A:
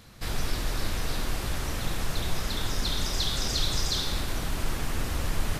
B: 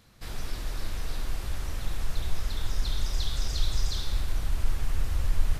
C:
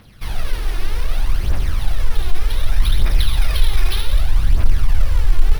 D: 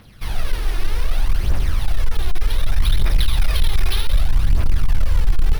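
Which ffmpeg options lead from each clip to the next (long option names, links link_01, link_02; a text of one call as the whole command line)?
ffmpeg -i in.wav -af "asubboost=boost=4.5:cutoff=99,volume=-7.5dB" out.wav
ffmpeg -i in.wav -af "acrusher=samples=6:mix=1:aa=0.000001,aphaser=in_gain=1:out_gain=1:delay=2.9:decay=0.53:speed=0.65:type=triangular,acontrast=75,volume=1.5dB" out.wav
ffmpeg -i in.wav -af "volume=8.5dB,asoftclip=hard,volume=-8.5dB" out.wav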